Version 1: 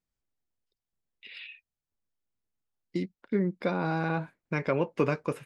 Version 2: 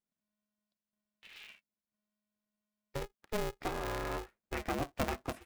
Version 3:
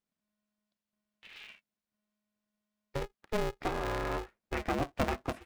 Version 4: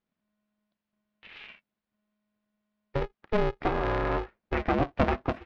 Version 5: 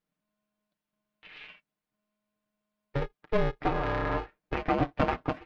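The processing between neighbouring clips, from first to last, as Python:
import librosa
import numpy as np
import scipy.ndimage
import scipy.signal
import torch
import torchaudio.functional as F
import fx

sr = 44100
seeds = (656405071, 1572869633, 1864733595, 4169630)

y1 = x * np.sign(np.sin(2.0 * np.pi * 210.0 * np.arange(len(x)) / sr))
y1 = y1 * librosa.db_to_amplitude(-8.0)
y2 = fx.high_shelf(y1, sr, hz=7000.0, db=-10.0)
y2 = y2 * librosa.db_to_amplitude(3.5)
y3 = fx.air_absorb(y2, sr, metres=260.0)
y3 = y3 * librosa.db_to_amplitude(7.0)
y4 = y3 + 0.66 * np.pad(y3, (int(6.6 * sr / 1000.0), 0))[:len(y3)]
y4 = y4 * librosa.db_to_amplitude(-2.5)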